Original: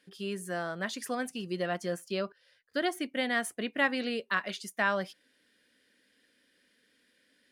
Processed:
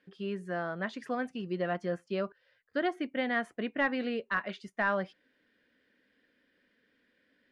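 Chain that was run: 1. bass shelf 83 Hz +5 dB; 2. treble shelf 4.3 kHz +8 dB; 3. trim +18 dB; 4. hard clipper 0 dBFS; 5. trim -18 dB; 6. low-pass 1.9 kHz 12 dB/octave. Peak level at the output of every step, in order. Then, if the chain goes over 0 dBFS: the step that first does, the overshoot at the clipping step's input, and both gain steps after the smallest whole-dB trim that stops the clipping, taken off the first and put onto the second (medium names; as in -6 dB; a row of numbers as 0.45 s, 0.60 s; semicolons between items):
-14.0 dBFS, -12.5 dBFS, +5.5 dBFS, 0.0 dBFS, -18.0 dBFS, -18.0 dBFS; step 3, 5.5 dB; step 3 +12 dB, step 5 -12 dB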